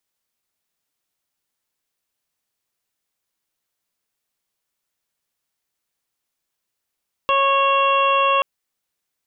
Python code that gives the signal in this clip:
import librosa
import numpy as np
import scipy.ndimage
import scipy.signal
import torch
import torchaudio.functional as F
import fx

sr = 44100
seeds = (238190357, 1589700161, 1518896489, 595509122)

y = fx.additive_steady(sr, length_s=1.13, hz=550.0, level_db=-21, upper_db=(5, -13, -17.0, -1.0, -8.0))